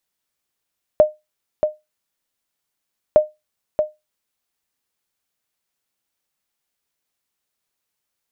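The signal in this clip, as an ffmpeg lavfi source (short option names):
-f lavfi -i "aevalsrc='0.708*(sin(2*PI*611*mod(t,2.16))*exp(-6.91*mod(t,2.16)/0.2)+0.473*sin(2*PI*611*max(mod(t,2.16)-0.63,0))*exp(-6.91*max(mod(t,2.16)-0.63,0)/0.2))':d=4.32:s=44100"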